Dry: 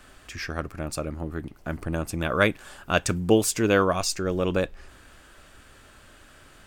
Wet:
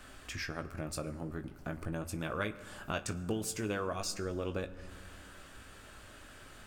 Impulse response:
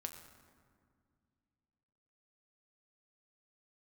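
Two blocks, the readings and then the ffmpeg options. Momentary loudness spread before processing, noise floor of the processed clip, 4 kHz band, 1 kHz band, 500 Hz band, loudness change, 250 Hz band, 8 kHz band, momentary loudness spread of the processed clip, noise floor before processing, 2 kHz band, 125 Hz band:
14 LU, -53 dBFS, -11.0 dB, -12.5 dB, -14.0 dB, -12.5 dB, -12.0 dB, -11.0 dB, 17 LU, -52 dBFS, -12.5 dB, -10.0 dB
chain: -filter_complex "[0:a]acompressor=threshold=-37dB:ratio=2.5,asplit=2[a][b];[1:a]atrim=start_sample=2205,adelay=19[c];[b][c]afir=irnorm=-1:irlink=0,volume=-4dB[d];[a][d]amix=inputs=2:normalize=0,volume=-2dB"

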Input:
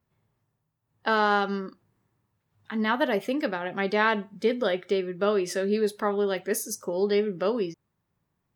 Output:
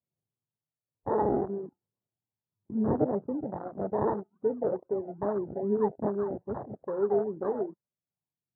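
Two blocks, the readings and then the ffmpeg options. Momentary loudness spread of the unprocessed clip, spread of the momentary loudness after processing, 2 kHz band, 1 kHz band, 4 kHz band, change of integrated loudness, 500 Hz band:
7 LU, 10 LU, -24.5 dB, -6.5 dB, under -40 dB, -4.5 dB, -3.0 dB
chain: -af "acrusher=samples=32:mix=1:aa=0.000001:lfo=1:lforange=19.2:lforate=2.4,lowpass=f=1.1k:w=0.5412,lowpass=f=1.1k:w=1.3066,flanger=delay=0.2:depth=2.7:regen=-78:speed=1.5:shape=sinusoidal,highpass=120,aphaser=in_gain=1:out_gain=1:delay=2.8:decay=0.35:speed=0.34:type=triangular,afwtdn=0.02,aemphasis=mode=reproduction:type=75fm"

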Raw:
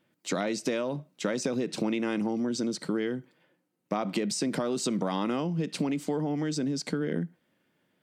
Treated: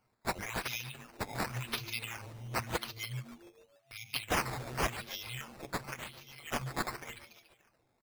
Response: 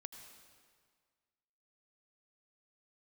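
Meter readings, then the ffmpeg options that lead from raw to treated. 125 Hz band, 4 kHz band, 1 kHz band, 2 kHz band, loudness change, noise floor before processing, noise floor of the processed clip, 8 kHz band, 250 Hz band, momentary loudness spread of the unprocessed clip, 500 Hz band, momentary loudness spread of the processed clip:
-5.5 dB, -2.0 dB, -1.5 dB, +1.0 dB, -7.5 dB, -75 dBFS, -74 dBFS, -6.0 dB, -17.5 dB, 5 LU, -12.5 dB, 13 LU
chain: -filter_complex "[0:a]alimiter=limit=-20dB:level=0:latency=1:release=210,aecho=1:1:7.2:0.71,afftfilt=real='re*(1-between(b*sr/4096,130,2000))':imag='im*(1-between(b*sr/4096,130,2000))':win_size=4096:overlap=0.75,asplit=7[a][b][c][d][e][f][g];[b]adelay=144,afreqshift=110,volume=-12dB[h];[c]adelay=288,afreqshift=220,volume=-17.4dB[i];[d]adelay=432,afreqshift=330,volume=-22.7dB[j];[e]adelay=576,afreqshift=440,volume=-28.1dB[k];[f]adelay=720,afreqshift=550,volume=-33.4dB[l];[g]adelay=864,afreqshift=660,volume=-38.8dB[m];[a][h][i][j][k][l][m]amix=inputs=7:normalize=0,acrusher=samples=10:mix=1:aa=0.000001:lfo=1:lforange=10:lforate=0.91,volume=2dB"

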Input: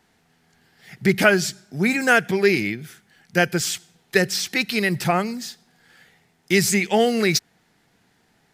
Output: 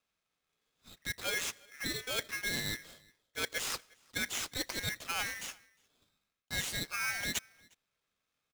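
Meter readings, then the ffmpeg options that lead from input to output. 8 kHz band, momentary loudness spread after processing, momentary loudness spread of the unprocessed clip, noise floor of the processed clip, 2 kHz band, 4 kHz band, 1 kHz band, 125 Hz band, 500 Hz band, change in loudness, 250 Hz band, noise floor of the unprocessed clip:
-10.5 dB, 8 LU, 11 LU, under -85 dBFS, -15.0 dB, -9.5 dB, -18.5 dB, -20.0 dB, -25.0 dB, -15.5 dB, -24.5 dB, -63 dBFS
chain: -filter_complex "[0:a]bandreject=f=1.7k:w=18,agate=range=-13dB:threshold=-50dB:ratio=16:detection=peak,highpass=f=190:w=0.5412,highpass=f=190:w=1.3066,acrossover=split=320 5400:gain=0.141 1 0.224[a][b][c];[a][b][c]amix=inputs=3:normalize=0,areverse,acompressor=threshold=-28dB:ratio=16,areverse,afreqshift=-140,asplit=2[d][e];[e]acrusher=bits=5:mix=0:aa=0.000001,volume=-10.5dB[f];[d][f]amix=inputs=2:normalize=0,asplit=2[g][h];[h]adelay=355.7,volume=-26dB,highshelf=f=4k:g=-8[i];[g][i]amix=inputs=2:normalize=0,aeval=exprs='val(0)*sgn(sin(2*PI*1900*n/s))':c=same,volume=-6.5dB"

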